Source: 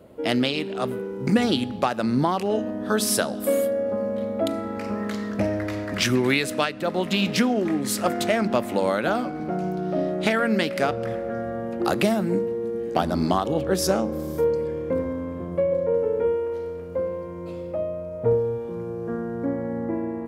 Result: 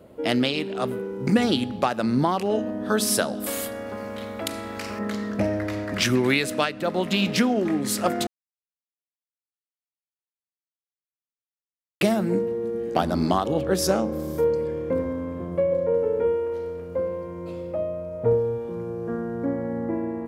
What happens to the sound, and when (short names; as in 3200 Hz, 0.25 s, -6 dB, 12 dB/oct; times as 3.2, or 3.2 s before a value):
3.46–4.99 spectral compressor 2:1
8.27–12.01 mute